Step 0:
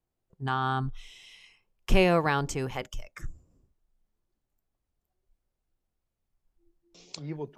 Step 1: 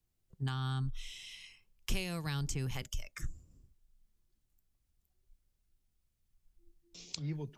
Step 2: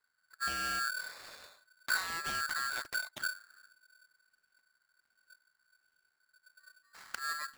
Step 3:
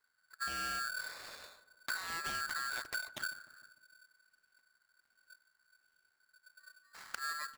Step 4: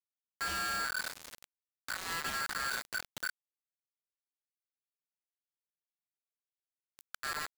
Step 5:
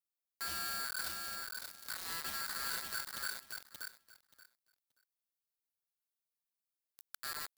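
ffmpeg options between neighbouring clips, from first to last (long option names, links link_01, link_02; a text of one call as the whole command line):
ffmpeg -i in.wav -filter_complex "[0:a]equalizer=frequency=660:width_type=o:width=2.9:gain=-12.5,acrossover=split=190|4200[link_01][link_02][link_03];[link_01]acompressor=threshold=-40dB:ratio=4[link_04];[link_02]acompressor=threshold=-48dB:ratio=4[link_05];[link_03]acompressor=threshold=-47dB:ratio=4[link_06];[link_04][link_05][link_06]amix=inputs=3:normalize=0,volume=5.5dB" out.wav
ffmpeg -i in.wav -filter_complex "[0:a]acrossover=split=260|1300|4000[link_01][link_02][link_03][link_04];[link_04]acrusher=samples=28:mix=1:aa=0.000001:lfo=1:lforange=28:lforate=1.3[link_05];[link_01][link_02][link_03][link_05]amix=inputs=4:normalize=0,aeval=exprs='val(0)*sgn(sin(2*PI*1500*n/s))':channel_layout=same" out.wav
ffmpeg -i in.wav -filter_complex "[0:a]acompressor=threshold=-37dB:ratio=6,asplit=2[link_01][link_02];[link_02]adelay=151,lowpass=frequency=1200:poles=1,volume=-14.5dB,asplit=2[link_03][link_04];[link_04]adelay=151,lowpass=frequency=1200:poles=1,volume=0.54,asplit=2[link_05][link_06];[link_06]adelay=151,lowpass=frequency=1200:poles=1,volume=0.54,asplit=2[link_07][link_08];[link_08]adelay=151,lowpass=frequency=1200:poles=1,volume=0.54,asplit=2[link_09][link_10];[link_10]adelay=151,lowpass=frequency=1200:poles=1,volume=0.54[link_11];[link_01][link_03][link_05][link_07][link_09][link_11]amix=inputs=6:normalize=0,volume=1dB" out.wav
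ffmpeg -i in.wav -af "alimiter=level_in=10dB:limit=-24dB:level=0:latency=1:release=297,volume=-10dB,acrusher=bits=6:mix=0:aa=0.000001,volume=4dB" out.wav
ffmpeg -i in.wav -af "aexciter=amount=1.6:drive=6.8:freq=3900,aecho=1:1:579|1158|1737:0.631|0.101|0.0162,volume=-7.5dB" out.wav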